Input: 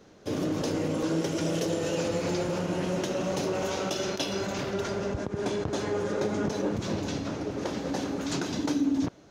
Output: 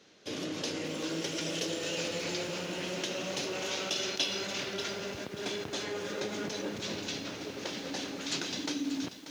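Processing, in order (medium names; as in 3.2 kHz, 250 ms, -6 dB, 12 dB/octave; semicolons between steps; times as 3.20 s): frequency weighting D; bit-crushed delay 586 ms, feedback 35%, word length 7-bit, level -11 dB; trim -7.5 dB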